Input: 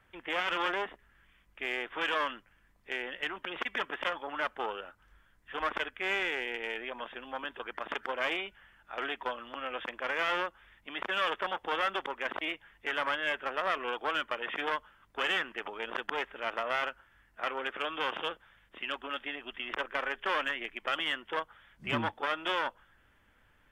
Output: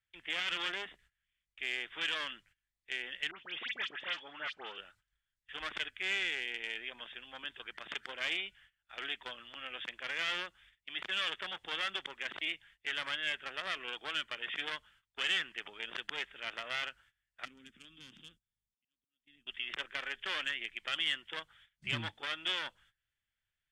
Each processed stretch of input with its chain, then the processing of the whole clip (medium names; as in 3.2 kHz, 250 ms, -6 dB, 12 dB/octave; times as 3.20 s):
3.31–4.78 s: low-pass 4.9 kHz + bass shelf 110 Hz -10.5 dB + phase dispersion highs, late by 74 ms, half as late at 2 kHz
17.45–19.47 s: FFT filter 140 Hz 0 dB, 250 Hz +7 dB, 380 Hz -13 dB, 630 Hz -25 dB, 3.1 kHz -18 dB, 6.2 kHz -5 dB + slow attack 581 ms
whole clip: dynamic bell 240 Hz, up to +8 dB, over -52 dBFS, Q 0.74; gate -56 dBFS, range -18 dB; graphic EQ 125/250/500/1000/2000/4000/8000 Hz +5/-10/-6/-7/+4/+11/+11 dB; trim -8 dB